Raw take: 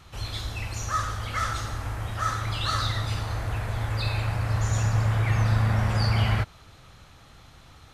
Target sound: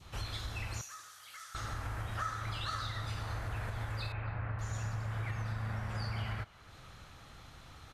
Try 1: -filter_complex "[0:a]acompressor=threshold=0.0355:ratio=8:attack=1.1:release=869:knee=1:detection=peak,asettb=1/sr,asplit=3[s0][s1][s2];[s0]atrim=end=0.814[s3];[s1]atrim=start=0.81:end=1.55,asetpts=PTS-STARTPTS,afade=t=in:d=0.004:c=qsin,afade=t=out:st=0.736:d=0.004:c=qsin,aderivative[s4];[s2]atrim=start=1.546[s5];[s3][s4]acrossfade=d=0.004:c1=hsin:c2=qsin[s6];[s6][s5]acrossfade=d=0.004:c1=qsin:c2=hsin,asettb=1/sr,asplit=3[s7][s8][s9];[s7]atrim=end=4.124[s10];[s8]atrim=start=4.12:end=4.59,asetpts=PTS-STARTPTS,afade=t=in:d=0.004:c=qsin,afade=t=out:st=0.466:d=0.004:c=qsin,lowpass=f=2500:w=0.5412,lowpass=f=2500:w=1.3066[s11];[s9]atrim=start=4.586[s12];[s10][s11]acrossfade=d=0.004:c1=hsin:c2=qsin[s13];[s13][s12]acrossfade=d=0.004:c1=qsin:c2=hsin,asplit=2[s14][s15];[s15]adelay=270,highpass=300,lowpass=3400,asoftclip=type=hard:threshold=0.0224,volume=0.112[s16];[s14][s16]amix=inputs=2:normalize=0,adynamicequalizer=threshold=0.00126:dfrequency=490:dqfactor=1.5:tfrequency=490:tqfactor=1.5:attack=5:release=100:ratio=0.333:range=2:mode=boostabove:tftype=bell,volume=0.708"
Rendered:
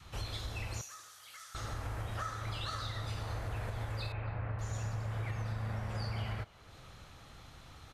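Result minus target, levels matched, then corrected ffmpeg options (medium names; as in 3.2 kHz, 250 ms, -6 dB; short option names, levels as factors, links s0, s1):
500 Hz band +3.0 dB
-filter_complex "[0:a]acompressor=threshold=0.0355:ratio=8:attack=1.1:release=869:knee=1:detection=peak,asettb=1/sr,asplit=3[s0][s1][s2];[s0]atrim=end=0.814[s3];[s1]atrim=start=0.81:end=1.55,asetpts=PTS-STARTPTS,afade=t=in:d=0.004:c=qsin,afade=t=out:st=0.736:d=0.004:c=qsin,aderivative[s4];[s2]atrim=start=1.546[s5];[s3][s4]acrossfade=d=0.004:c1=hsin:c2=qsin[s6];[s6][s5]acrossfade=d=0.004:c1=qsin:c2=hsin,asettb=1/sr,asplit=3[s7][s8][s9];[s7]atrim=end=4.124[s10];[s8]atrim=start=4.12:end=4.59,asetpts=PTS-STARTPTS,afade=t=in:d=0.004:c=qsin,afade=t=out:st=0.466:d=0.004:c=qsin,lowpass=f=2500:w=0.5412,lowpass=f=2500:w=1.3066[s11];[s9]atrim=start=4.586[s12];[s10][s11]acrossfade=d=0.004:c1=hsin:c2=qsin[s13];[s13][s12]acrossfade=d=0.004:c1=qsin:c2=hsin,asplit=2[s14][s15];[s15]adelay=270,highpass=300,lowpass=3400,asoftclip=type=hard:threshold=0.0224,volume=0.112[s16];[s14][s16]amix=inputs=2:normalize=0,adynamicequalizer=threshold=0.00126:dfrequency=1500:dqfactor=1.5:tfrequency=1500:tqfactor=1.5:attack=5:release=100:ratio=0.333:range=2:mode=boostabove:tftype=bell,volume=0.708"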